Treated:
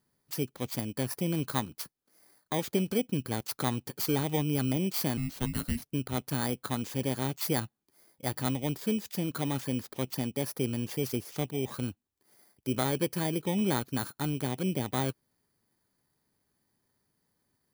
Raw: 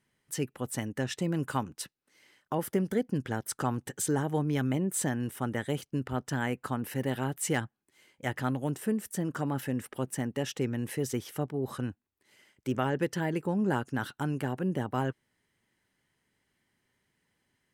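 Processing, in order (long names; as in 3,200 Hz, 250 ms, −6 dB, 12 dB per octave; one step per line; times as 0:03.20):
samples in bit-reversed order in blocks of 16 samples
0:05.17–0:05.82: frequency shifter −380 Hz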